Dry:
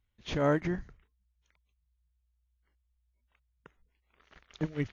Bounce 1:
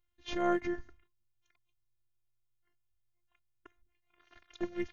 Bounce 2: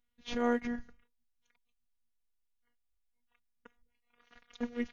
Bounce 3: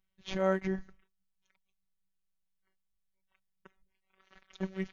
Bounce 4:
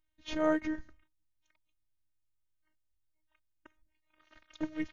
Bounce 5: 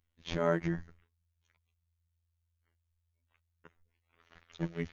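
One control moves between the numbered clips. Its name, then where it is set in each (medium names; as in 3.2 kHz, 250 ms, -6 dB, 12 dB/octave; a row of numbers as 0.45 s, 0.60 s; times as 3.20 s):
robot voice, frequency: 350 Hz, 240 Hz, 190 Hz, 310 Hz, 84 Hz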